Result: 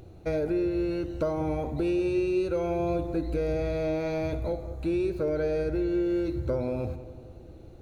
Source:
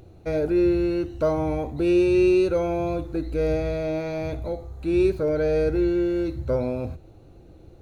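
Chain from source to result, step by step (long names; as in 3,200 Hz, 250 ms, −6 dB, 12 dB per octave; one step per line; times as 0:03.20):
downward compressor, threshold −25 dBFS, peak gain reduction 9 dB
on a send: feedback echo with a low-pass in the loop 192 ms, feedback 53%, low-pass 1,800 Hz, level −12.5 dB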